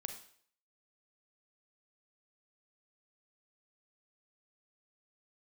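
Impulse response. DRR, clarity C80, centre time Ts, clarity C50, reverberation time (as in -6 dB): 5.5 dB, 11.5 dB, 17 ms, 8.0 dB, 0.60 s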